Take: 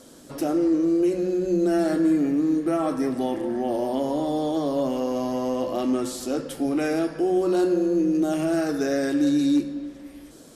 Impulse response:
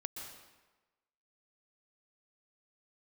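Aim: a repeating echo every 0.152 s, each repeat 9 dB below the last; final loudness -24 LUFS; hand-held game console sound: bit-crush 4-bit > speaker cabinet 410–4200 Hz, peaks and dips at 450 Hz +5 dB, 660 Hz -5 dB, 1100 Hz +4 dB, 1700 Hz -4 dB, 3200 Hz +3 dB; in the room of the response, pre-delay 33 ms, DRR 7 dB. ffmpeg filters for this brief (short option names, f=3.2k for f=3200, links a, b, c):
-filter_complex "[0:a]aecho=1:1:152|304|456|608:0.355|0.124|0.0435|0.0152,asplit=2[a][b];[1:a]atrim=start_sample=2205,adelay=33[c];[b][c]afir=irnorm=-1:irlink=0,volume=-6dB[d];[a][d]amix=inputs=2:normalize=0,acrusher=bits=3:mix=0:aa=0.000001,highpass=410,equalizer=f=450:t=q:w=4:g=5,equalizer=f=660:t=q:w=4:g=-5,equalizer=f=1.1k:t=q:w=4:g=4,equalizer=f=1.7k:t=q:w=4:g=-4,equalizer=f=3.2k:t=q:w=4:g=3,lowpass=f=4.2k:w=0.5412,lowpass=f=4.2k:w=1.3066"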